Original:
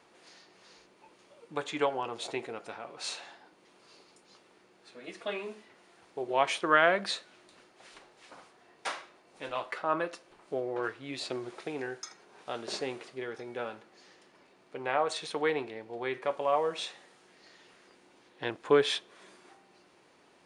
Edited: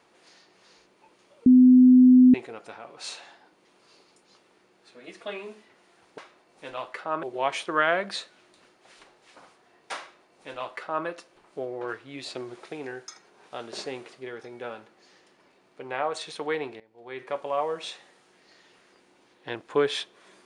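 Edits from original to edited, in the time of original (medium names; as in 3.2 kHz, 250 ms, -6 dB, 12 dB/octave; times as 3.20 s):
1.46–2.34 s: bleep 253 Hz -10.5 dBFS
8.96–10.01 s: copy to 6.18 s
15.75–16.21 s: fade in quadratic, from -17.5 dB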